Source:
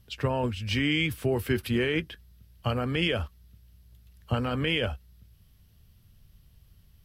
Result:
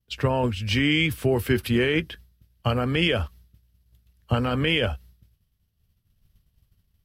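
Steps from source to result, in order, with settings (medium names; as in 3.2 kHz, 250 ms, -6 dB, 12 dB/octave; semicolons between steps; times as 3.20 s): expander -46 dBFS; trim +4.5 dB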